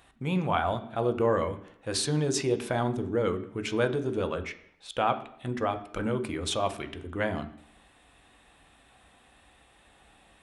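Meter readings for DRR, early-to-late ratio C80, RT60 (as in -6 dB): 7.0 dB, 16.0 dB, 0.70 s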